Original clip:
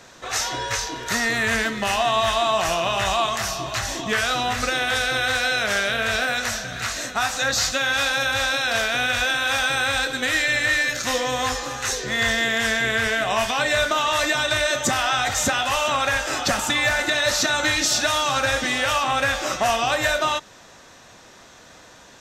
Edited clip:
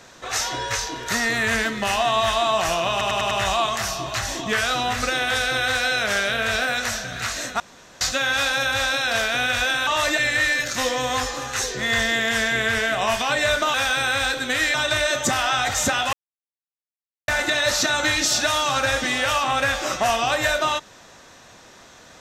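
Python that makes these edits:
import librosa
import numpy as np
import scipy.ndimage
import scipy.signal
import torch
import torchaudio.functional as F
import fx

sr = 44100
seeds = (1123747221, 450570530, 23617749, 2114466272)

y = fx.edit(x, sr, fx.stutter(start_s=2.91, slice_s=0.1, count=5),
    fx.room_tone_fill(start_s=7.2, length_s=0.41),
    fx.swap(start_s=9.47, length_s=1.0, other_s=14.03, other_length_s=0.31),
    fx.silence(start_s=15.73, length_s=1.15), tone=tone)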